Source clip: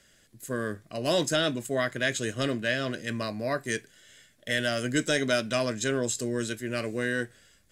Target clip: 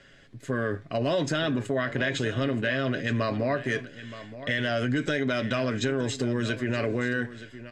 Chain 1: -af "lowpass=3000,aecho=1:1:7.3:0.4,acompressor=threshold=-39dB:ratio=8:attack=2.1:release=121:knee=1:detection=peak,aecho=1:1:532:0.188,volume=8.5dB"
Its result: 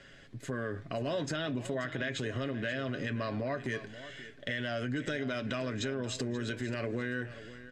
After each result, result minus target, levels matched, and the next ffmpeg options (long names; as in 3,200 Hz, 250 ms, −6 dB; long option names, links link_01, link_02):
echo 390 ms early; downward compressor: peak gain reduction +8 dB
-af "lowpass=3000,aecho=1:1:7.3:0.4,acompressor=threshold=-39dB:ratio=8:attack=2.1:release=121:knee=1:detection=peak,aecho=1:1:922:0.188,volume=8.5dB"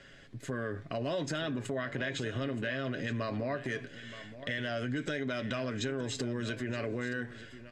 downward compressor: peak gain reduction +8 dB
-af "lowpass=3000,aecho=1:1:7.3:0.4,acompressor=threshold=-30dB:ratio=8:attack=2.1:release=121:knee=1:detection=peak,aecho=1:1:922:0.188,volume=8.5dB"